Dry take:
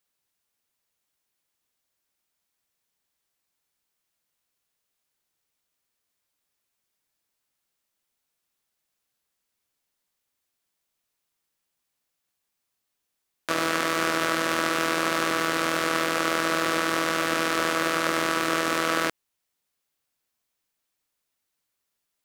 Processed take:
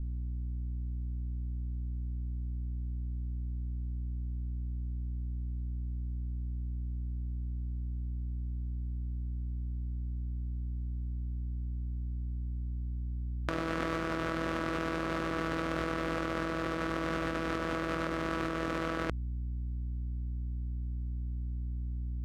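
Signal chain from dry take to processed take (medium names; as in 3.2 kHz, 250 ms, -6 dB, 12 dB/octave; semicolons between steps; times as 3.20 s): hum 60 Hz, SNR 20 dB; RIAA curve playback; compressor with a negative ratio -29 dBFS, ratio -1; trim -2.5 dB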